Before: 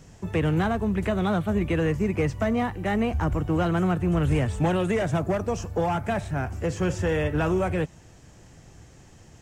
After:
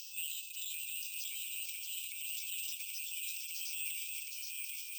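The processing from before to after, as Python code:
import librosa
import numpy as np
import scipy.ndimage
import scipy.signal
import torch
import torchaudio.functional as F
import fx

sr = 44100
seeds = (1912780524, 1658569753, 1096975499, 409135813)

p1 = fx.brickwall_bandpass(x, sr, low_hz=2500.0, high_hz=6300.0)
p2 = 10.0 ** (-30.5 / 20.0) * np.tanh(p1 / 10.0 ** (-30.5 / 20.0))
p3 = fx.stretch_grains(p2, sr, factor=0.53, grain_ms=98.0)
p4 = p3 + fx.echo_single(p3, sr, ms=415, db=-15.5, dry=0)
p5 = fx.echo_pitch(p4, sr, ms=555, semitones=-1, count=2, db_per_echo=-6.0)
p6 = fx.transient(p5, sr, attack_db=-6, sustain_db=9)
p7 = (np.kron(p6[::4], np.eye(4)[0]) * 4)[:len(p6)]
y = fx.band_squash(p7, sr, depth_pct=70)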